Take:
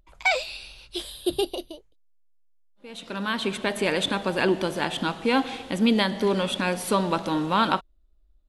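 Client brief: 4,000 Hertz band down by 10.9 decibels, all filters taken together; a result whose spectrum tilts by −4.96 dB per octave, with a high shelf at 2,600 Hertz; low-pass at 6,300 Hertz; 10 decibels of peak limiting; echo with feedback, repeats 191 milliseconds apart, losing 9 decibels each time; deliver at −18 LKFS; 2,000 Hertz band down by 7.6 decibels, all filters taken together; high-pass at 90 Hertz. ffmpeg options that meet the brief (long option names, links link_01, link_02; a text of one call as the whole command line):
ffmpeg -i in.wav -af "highpass=90,lowpass=6300,equalizer=frequency=2000:width_type=o:gain=-6,highshelf=frequency=2600:gain=-4.5,equalizer=frequency=4000:width_type=o:gain=-7.5,alimiter=limit=-20.5dB:level=0:latency=1,aecho=1:1:191|382|573|764:0.355|0.124|0.0435|0.0152,volume=12.5dB" out.wav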